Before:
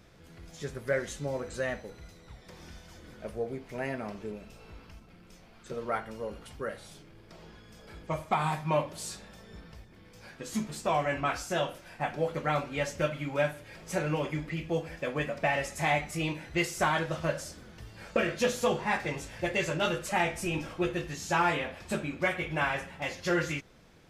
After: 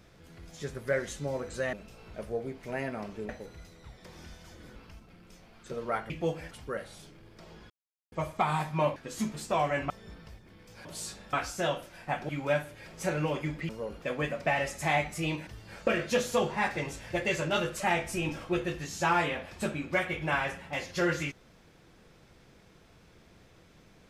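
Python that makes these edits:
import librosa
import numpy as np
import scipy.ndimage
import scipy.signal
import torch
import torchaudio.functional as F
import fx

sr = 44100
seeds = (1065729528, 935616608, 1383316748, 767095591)

y = fx.edit(x, sr, fx.swap(start_s=1.73, length_s=1.47, other_s=4.35, other_length_s=0.41),
    fx.swap(start_s=6.1, length_s=0.33, other_s=14.58, other_length_s=0.41),
    fx.silence(start_s=7.62, length_s=0.42),
    fx.swap(start_s=8.88, length_s=0.48, other_s=10.31, other_length_s=0.94),
    fx.cut(start_s=12.21, length_s=0.97),
    fx.cut(start_s=16.44, length_s=1.32), tone=tone)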